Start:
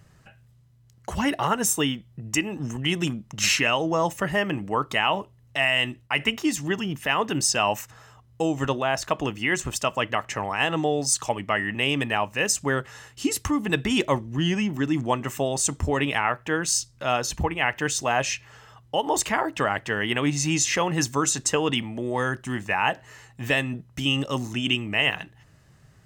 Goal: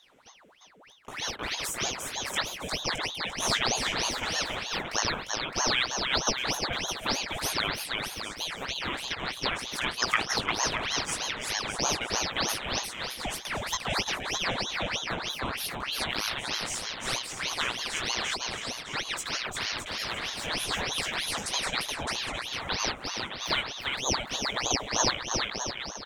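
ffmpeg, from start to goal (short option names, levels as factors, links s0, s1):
-filter_complex "[0:a]asplit=2[s0][s1];[s1]acompressor=threshold=0.0178:ratio=6,volume=1.19[s2];[s0][s2]amix=inputs=2:normalize=0,asettb=1/sr,asplit=3[s3][s4][s5];[s3]atrim=end=10.024[s6];[s4]atrim=start=10.02:end=10.42,asetpts=PTS-STARTPTS,afade=t=in:d=0.004:c=qsin,afade=t=out:st=0.396:d=0.004:c=qsin,highpass=f=1600:t=q:w=13[s7];[s5]atrim=start=10.416[s8];[s6][s7]acrossfade=d=0.004:c1=hsin:c2=qsin[s9];[s9][s8]acrossfade=d=0.004:c1=qsin:c2=hsin,asettb=1/sr,asplit=3[s10][s11][s12];[s10]atrim=end=19.814[s13];[s11]atrim=start=19.81:end=20.47,asetpts=PTS-STARTPTS,afade=t=in:d=0.004:c=qsin,afade=t=out:st=0.656:d=0.004:c=qsin,asoftclip=type=hard:threshold=0.0891[s14];[s12]atrim=start=20.466[s15];[s13][s14]acrossfade=d=0.004:c1=hsin:c2=qsin[s16];[s16][s15]acrossfade=d=0.004:c1=qsin:c2=hsin,acrossover=split=3000[s17][s18];[s17]aexciter=amount=5.6:drive=4.6:freq=2200[s19];[s19][s18]amix=inputs=2:normalize=0,flanger=delay=16:depth=2.5:speed=1.5,aecho=1:1:350|612.5|809.4|957|1068:0.631|0.398|0.251|0.158|0.1,aeval=exprs='val(0)*sin(2*PI*2000*n/s+2000*0.85/3.2*sin(2*PI*3.2*n/s))':c=same,volume=0.447"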